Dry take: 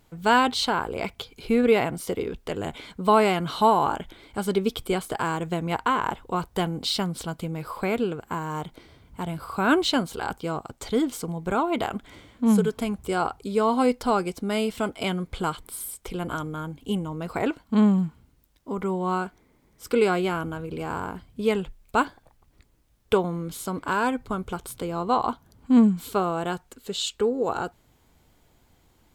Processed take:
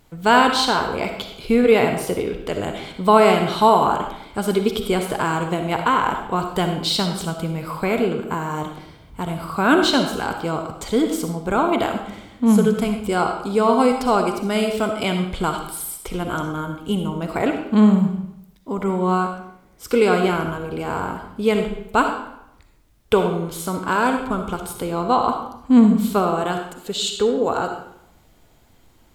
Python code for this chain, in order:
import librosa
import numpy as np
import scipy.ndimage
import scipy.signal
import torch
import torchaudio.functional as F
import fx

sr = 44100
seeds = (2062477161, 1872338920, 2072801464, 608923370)

y = fx.rev_freeverb(x, sr, rt60_s=0.77, hf_ratio=0.85, predelay_ms=20, drr_db=4.5)
y = y * librosa.db_to_amplitude(4.5)